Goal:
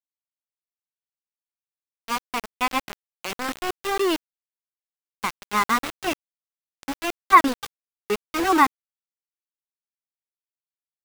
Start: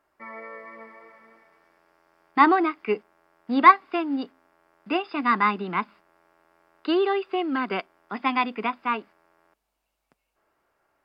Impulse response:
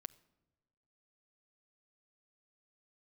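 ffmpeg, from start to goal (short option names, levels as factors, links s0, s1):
-filter_complex "[0:a]areverse,asplit=7[s0][s1][s2][s3][s4][s5][s6];[s1]adelay=287,afreqshift=80,volume=0.119[s7];[s2]adelay=574,afreqshift=160,volume=0.075[s8];[s3]adelay=861,afreqshift=240,volume=0.0473[s9];[s4]adelay=1148,afreqshift=320,volume=0.0299[s10];[s5]adelay=1435,afreqshift=400,volume=0.0186[s11];[s6]adelay=1722,afreqshift=480,volume=0.0117[s12];[s0][s7][s8][s9][s10][s11][s12]amix=inputs=7:normalize=0,aeval=exprs='val(0)*gte(abs(val(0)),0.075)':c=same"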